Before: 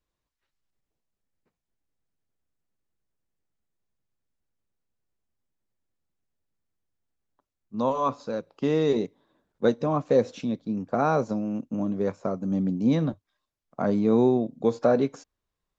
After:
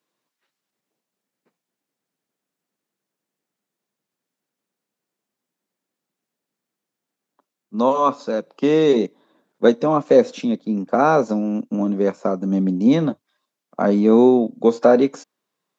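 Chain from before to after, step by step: HPF 180 Hz 24 dB/oct; gain +8 dB

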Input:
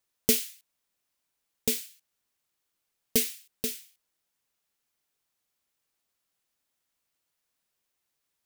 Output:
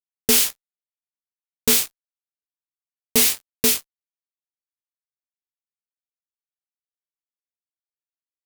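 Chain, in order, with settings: fuzz box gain 39 dB, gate -45 dBFS; added harmonics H 7 -21 dB, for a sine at -9 dBFS

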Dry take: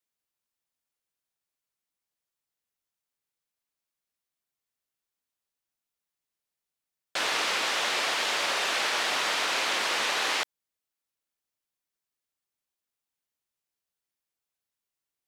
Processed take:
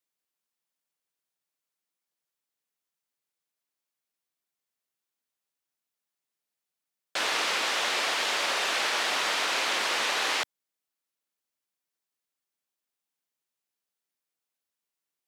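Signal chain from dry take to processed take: HPF 150 Hz 12 dB/oct

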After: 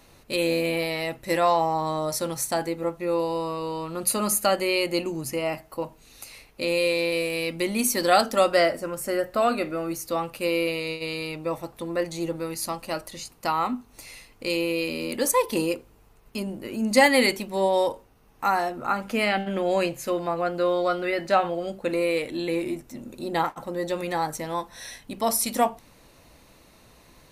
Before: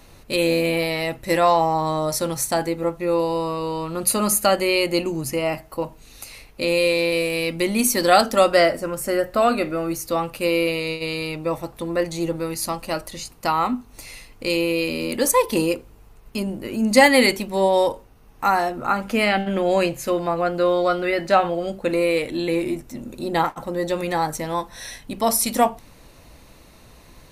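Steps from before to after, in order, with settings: low shelf 97 Hz -7 dB; gain -4 dB

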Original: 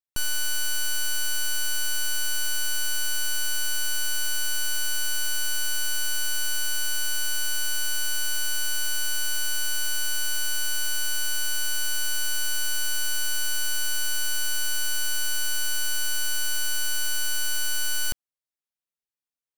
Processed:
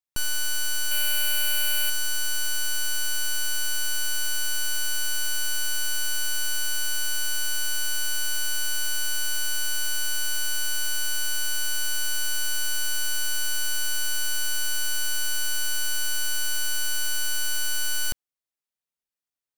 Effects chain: 0.91–1.9 fifteen-band EQ 630 Hz +7 dB, 2500 Hz +9 dB, 6300 Hz -5 dB, 16000 Hz +9 dB

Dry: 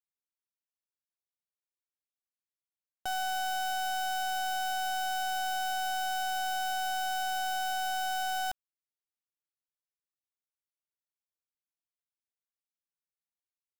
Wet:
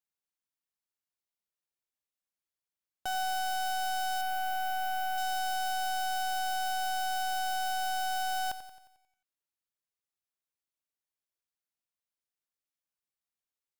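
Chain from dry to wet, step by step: 4.21–5.18 band shelf 5800 Hz -8 dB; lo-fi delay 89 ms, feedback 55%, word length 12-bit, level -12 dB

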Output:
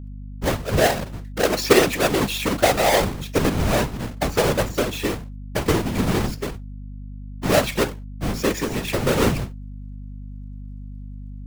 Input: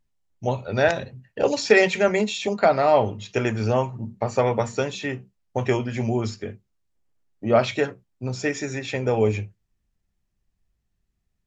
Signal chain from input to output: half-waves squared off; in parallel at +0.5 dB: compressor, threshold -23 dBFS, peak gain reduction 15 dB; on the sum: whisperiser; hum 50 Hz, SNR 12 dB; gain -5.5 dB

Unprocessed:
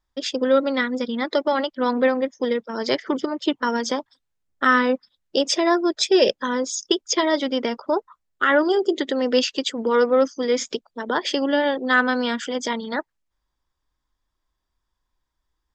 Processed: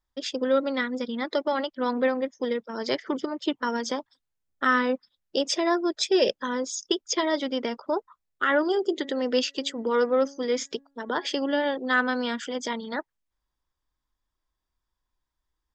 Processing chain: 8.92–11.27 de-hum 277.9 Hz, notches 7; gain -5 dB

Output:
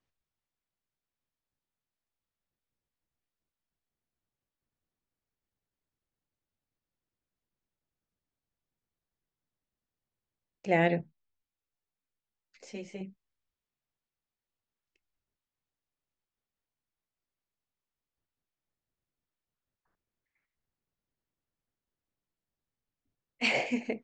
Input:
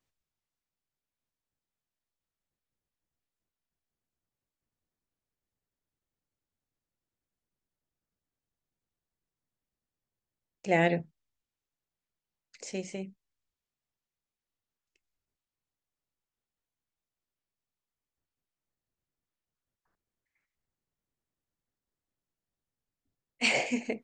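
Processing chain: air absorption 110 m; 11.01–13.01 ensemble effect

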